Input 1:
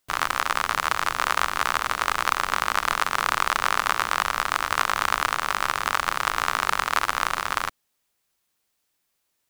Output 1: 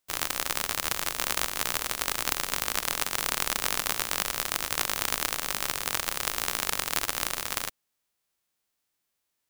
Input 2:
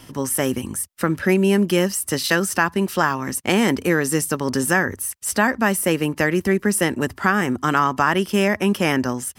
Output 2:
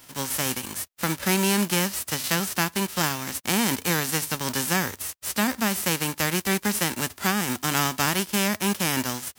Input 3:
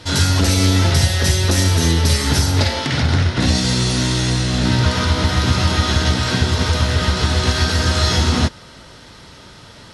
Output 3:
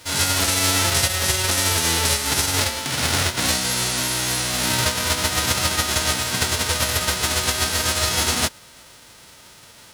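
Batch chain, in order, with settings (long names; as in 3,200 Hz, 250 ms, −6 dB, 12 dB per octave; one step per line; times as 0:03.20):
spectral envelope flattened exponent 0.3
level −5.5 dB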